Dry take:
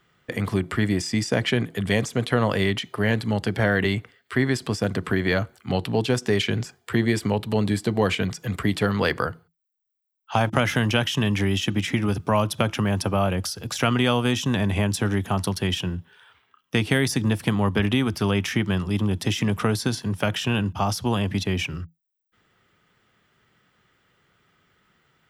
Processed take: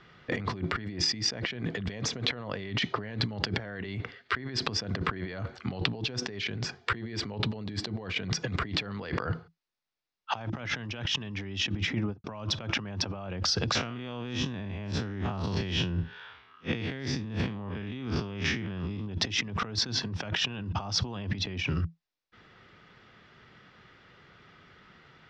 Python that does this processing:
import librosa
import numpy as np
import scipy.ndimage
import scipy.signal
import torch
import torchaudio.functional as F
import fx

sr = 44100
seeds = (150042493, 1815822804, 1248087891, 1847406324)

y = fx.studio_fade_out(x, sr, start_s=11.55, length_s=0.69)
y = fx.spec_blur(y, sr, span_ms=102.0, at=(13.75, 19.07))
y = scipy.signal.sosfilt(scipy.signal.butter(6, 5600.0, 'lowpass', fs=sr, output='sos'), y)
y = fx.notch(y, sr, hz=3100.0, q=23.0)
y = fx.over_compress(y, sr, threshold_db=-34.0, ratio=-1.0)